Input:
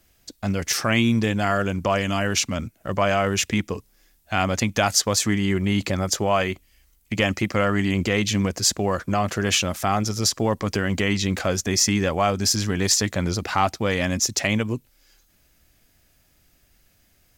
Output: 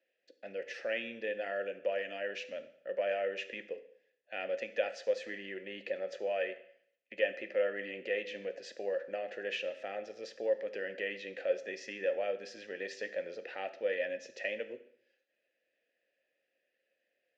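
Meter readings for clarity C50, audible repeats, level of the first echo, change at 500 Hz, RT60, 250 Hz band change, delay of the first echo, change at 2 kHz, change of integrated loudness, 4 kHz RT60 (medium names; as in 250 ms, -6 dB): 13.0 dB, no echo, no echo, -8.0 dB, 0.65 s, -27.0 dB, no echo, -12.5 dB, -15.0 dB, 0.65 s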